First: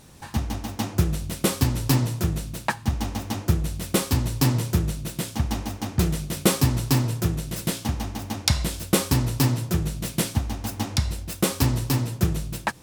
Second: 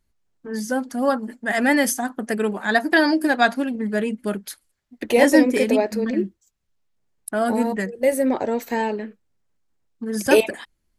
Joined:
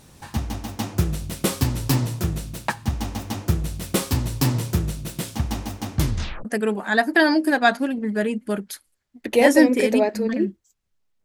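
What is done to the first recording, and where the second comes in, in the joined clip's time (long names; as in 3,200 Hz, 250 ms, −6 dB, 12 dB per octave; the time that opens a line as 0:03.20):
first
0:05.95: tape stop 0.50 s
0:06.45: continue with second from 0:02.22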